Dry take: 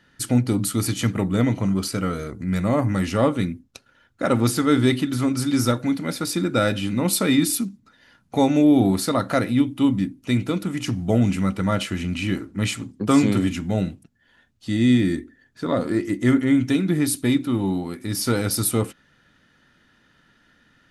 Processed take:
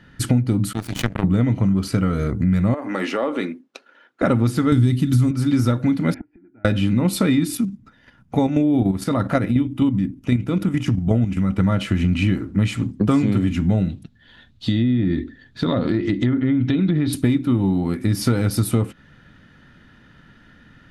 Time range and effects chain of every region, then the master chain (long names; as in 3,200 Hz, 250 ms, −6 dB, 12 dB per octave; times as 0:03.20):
0:00.73–0:01.24: high-pass filter 80 Hz + power curve on the samples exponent 3 + background raised ahead of every attack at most 78 dB per second
0:02.74–0:04.22: high-pass filter 330 Hz 24 dB per octave + high-shelf EQ 7,500 Hz −10.5 dB + downward compressor 4 to 1, threshold −26 dBFS
0:04.72–0:05.31: bass and treble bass +13 dB, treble +13 dB + one half of a high-frequency compander encoder only
0:06.14–0:06.65: Gaussian smoothing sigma 3.8 samples + gate with flip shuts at −26 dBFS, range −35 dB + phaser with its sweep stopped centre 780 Hz, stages 8
0:07.55–0:11.60: notch filter 4,200 Hz, Q 9.4 + output level in coarse steps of 9 dB
0:13.89–0:17.13: treble cut that deepens with the level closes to 1,700 Hz, closed at −15 dBFS + parametric band 3,800 Hz +13.5 dB 0.65 octaves + downward compressor 3 to 1, threshold −25 dBFS
whole clip: bass and treble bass +8 dB, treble −8 dB; downward compressor, threshold −22 dBFS; level +7 dB